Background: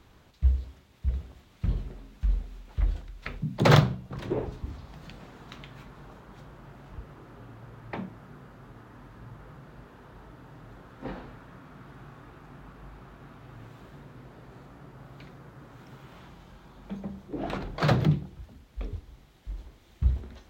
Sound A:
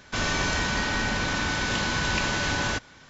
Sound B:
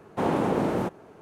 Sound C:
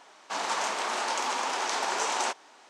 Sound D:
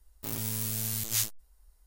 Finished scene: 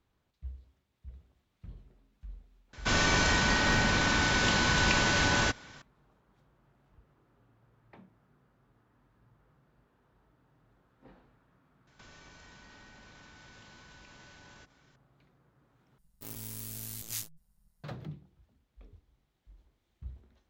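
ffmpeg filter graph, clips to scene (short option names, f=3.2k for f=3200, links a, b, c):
-filter_complex "[1:a]asplit=2[a][b];[0:a]volume=-19.5dB[c];[b]acompressor=threshold=-36dB:ratio=6:attack=3.2:release=140:knee=1:detection=peak[d];[4:a]tremolo=f=160:d=0.571[e];[c]asplit=2[f][g];[f]atrim=end=15.984[h];[e]atrim=end=1.86,asetpts=PTS-STARTPTS,volume=-6.5dB[i];[g]atrim=start=17.836[j];[a]atrim=end=3.09,asetpts=PTS-STARTPTS,afade=t=in:d=0.004:c=hsin,afade=t=out:st=3.086:d=0.004:c=hsin,adelay=2730[k];[d]atrim=end=3.09,asetpts=PTS-STARTPTS,volume=-16dB,afade=t=in:d=0.004:c=hsin,afade=t=out:st=3.086:d=0.004:c=hsin,adelay=11870[l];[h][i]acrossfade=d=0.004:c1=hsin:c2=hsin[m];[m][j]acrossfade=d=0.004:c1=hsin:c2=hsin[n];[n][k][l]amix=inputs=3:normalize=0"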